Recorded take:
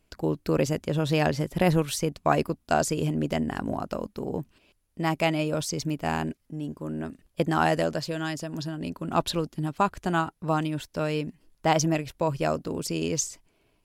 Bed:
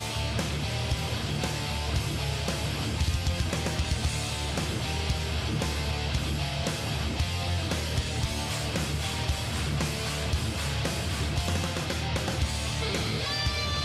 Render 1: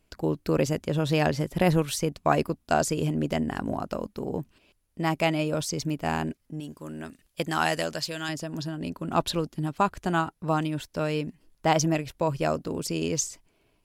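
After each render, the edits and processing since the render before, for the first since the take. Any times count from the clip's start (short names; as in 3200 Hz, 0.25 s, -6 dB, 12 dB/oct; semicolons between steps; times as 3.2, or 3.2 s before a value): 6.6–8.29 tilt shelf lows -6 dB, about 1400 Hz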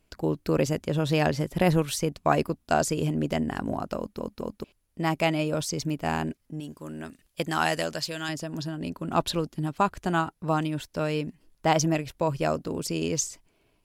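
3.98 stutter in place 0.22 s, 3 plays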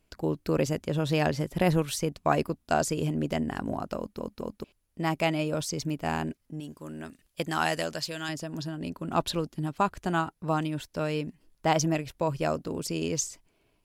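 gain -2 dB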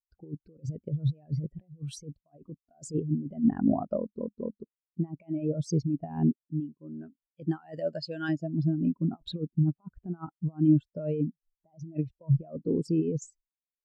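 negative-ratio compressor -31 dBFS, ratio -0.5; spectral expander 2.5:1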